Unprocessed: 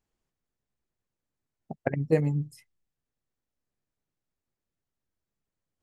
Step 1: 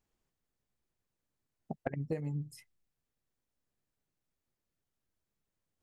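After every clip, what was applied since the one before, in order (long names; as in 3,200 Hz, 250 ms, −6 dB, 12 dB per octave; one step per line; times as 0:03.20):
downward compressor 20 to 1, threshold −32 dBFS, peak gain reduction 16 dB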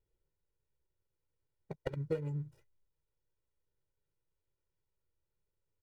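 running median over 41 samples
comb filter 2.1 ms, depth 97%
level −2 dB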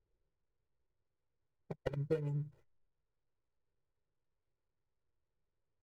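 running median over 15 samples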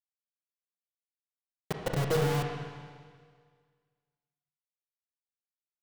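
log-companded quantiser 2 bits
convolution reverb RT60 1.8 s, pre-delay 26 ms, DRR 2 dB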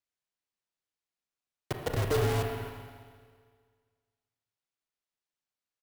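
frequency shifter −35 Hz
far-end echo of a speakerphone 270 ms, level −13 dB
sample-rate reduction 14,000 Hz, jitter 0%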